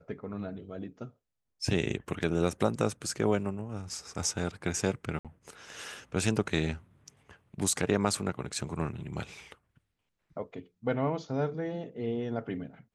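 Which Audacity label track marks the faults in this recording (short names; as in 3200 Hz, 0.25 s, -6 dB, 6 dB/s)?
5.190000	5.250000	gap 57 ms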